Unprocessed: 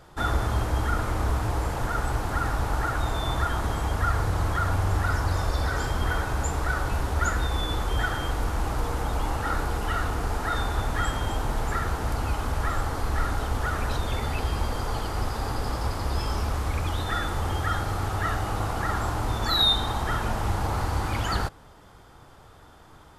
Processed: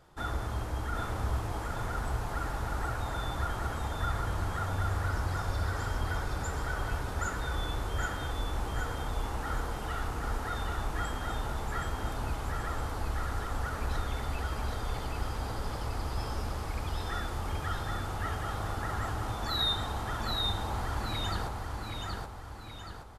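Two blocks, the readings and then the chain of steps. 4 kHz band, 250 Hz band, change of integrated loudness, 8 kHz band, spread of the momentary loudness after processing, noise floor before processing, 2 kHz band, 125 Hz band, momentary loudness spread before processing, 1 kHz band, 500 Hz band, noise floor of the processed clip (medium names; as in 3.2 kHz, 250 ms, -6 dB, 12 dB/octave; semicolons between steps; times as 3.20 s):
-7.0 dB, -7.0 dB, -7.0 dB, -7.0 dB, 4 LU, -51 dBFS, -7.0 dB, -7.0 dB, 4 LU, -7.0 dB, -7.0 dB, -40 dBFS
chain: feedback delay 774 ms, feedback 45%, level -3 dB; trim -9 dB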